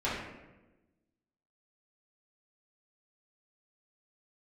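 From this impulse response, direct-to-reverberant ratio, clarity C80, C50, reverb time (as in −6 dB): −10.0 dB, 4.0 dB, 1.0 dB, 1.1 s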